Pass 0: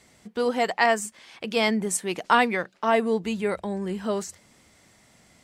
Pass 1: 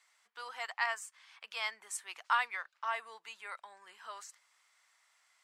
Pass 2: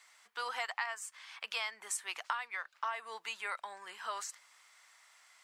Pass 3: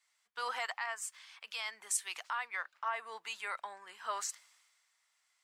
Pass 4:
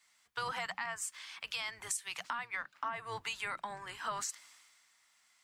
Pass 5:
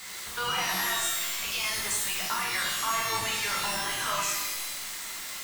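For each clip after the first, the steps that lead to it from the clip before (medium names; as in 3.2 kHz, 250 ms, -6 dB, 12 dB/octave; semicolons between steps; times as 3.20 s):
Chebyshev high-pass 1.1 kHz, order 3; tilt EQ -2 dB/octave; trim -7 dB
compression 16:1, threshold -41 dBFS, peak gain reduction 18 dB; trim +8 dB
peak limiter -28.5 dBFS, peak gain reduction 7.5 dB; three bands expanded up and down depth 70%; trim +1.5 dB
octave divider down 2 oct, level +3 dB; compression 6:1, threshold -42 dBFS, peak gain reduction 13 dB; trim +7 dB
jump at every zero crossing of -39 dBFS; pitch-shifted reverb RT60 1 s, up +12 st, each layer -2 dB, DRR -3.5 dB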